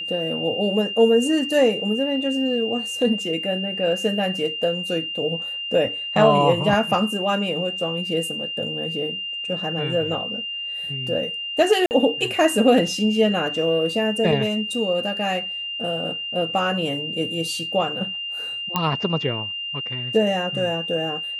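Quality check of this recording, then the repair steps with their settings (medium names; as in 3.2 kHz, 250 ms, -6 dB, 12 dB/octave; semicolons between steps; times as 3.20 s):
whine 2.8 kHz -27 dBFS
11.86–11.91 s: dropout 49 ms
18.76 s: pop -7 dBFS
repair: de-click; band-stop 2.8 kHz, Q 30; interpolate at 11.86 s, 49 ms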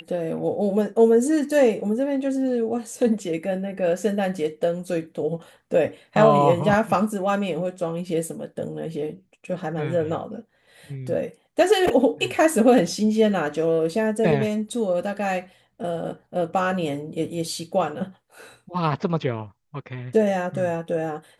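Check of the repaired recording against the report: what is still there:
nothing left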